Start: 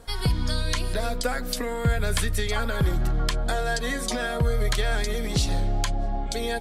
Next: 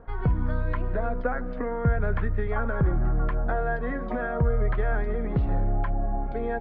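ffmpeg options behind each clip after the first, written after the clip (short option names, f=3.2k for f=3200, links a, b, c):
-af "lowpass=f=1.6k:w=0.5412,lowpass=f=1.6k:w=1.3066"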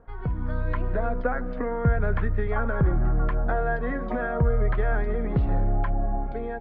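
-af "dynaudnorm=f=150:g=7:m=7dB,volume=-5.5dB"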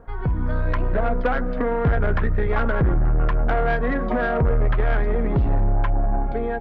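-af "asoftclip=type=tanh:threshold=-21.5dB,volume=7.5dB"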